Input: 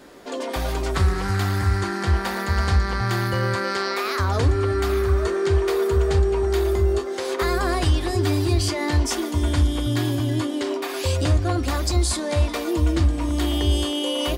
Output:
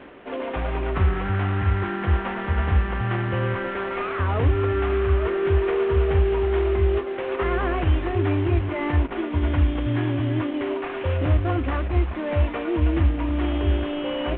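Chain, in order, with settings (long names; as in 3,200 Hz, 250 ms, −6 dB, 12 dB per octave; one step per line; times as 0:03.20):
variable-slope delta modulation 16 kbit/s
reversed playback
upward compression, threshold −35 dBFS
reversed playback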